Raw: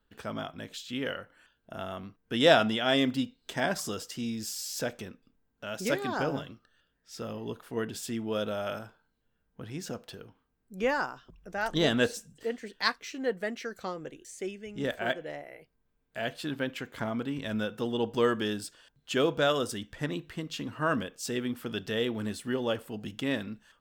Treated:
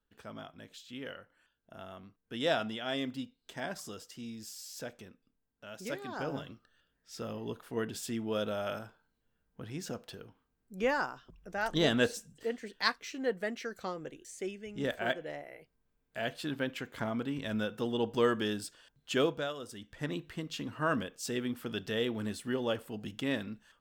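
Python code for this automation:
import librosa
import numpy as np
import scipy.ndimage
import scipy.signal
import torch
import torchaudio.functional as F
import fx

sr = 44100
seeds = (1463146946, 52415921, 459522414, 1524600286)

y = fx.gain(x, sr, db=fx.line((6.08, -9.5), (6.51, -2.0), (19.23, -2.0), (19.56, -14.5), (20.11, -2.5)))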